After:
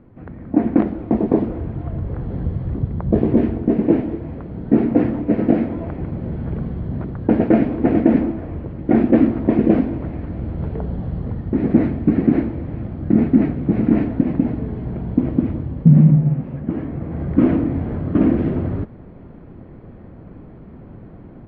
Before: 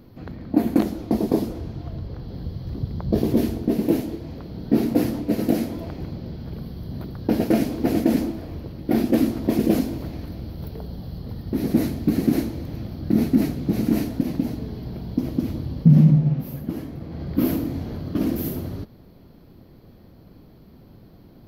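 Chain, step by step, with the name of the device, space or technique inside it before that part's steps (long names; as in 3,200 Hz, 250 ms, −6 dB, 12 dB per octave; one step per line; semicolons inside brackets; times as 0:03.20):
action camera in a waterproof case (low-pass filter 2,200 Hz 24 dB per octave; automatic gain control gain up to 9 dB; AAC 96 kbit/s 44,100 Hz)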